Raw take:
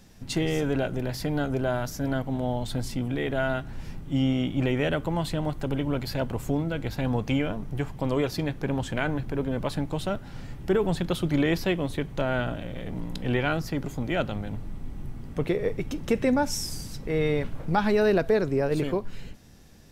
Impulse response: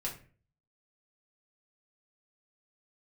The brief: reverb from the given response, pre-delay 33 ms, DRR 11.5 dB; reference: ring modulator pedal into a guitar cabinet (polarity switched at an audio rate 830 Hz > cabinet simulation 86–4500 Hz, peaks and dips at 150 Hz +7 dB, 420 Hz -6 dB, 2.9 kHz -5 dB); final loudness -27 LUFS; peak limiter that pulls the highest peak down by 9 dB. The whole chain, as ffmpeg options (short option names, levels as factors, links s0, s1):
-filter_complex "[0:a]alimiter=limit=0.106:level=0:latency=1,asplit=2[s0][s1];[1:a]atrim=start_sample=2205,adelay=33[s2];[s1][s2]afir=irnorm=-1:irlink=0,volume=0.224[s3];[s0][s3]amix=inputs=2:normalize=0,aeval=exprs='val(0)*sgn(sin(2*PI*830*n/s))':c=same,highpass=86,equalizer=f=150:t=q:w=4:g=7,equalizer=f=420:t=q:w=4:g=-6,equalizer=f=2900:t=q:w=4:g=-5,lowpass=f=4500:w=0.5412,lowpass=f=4500:w=1.3066,volume=1.33"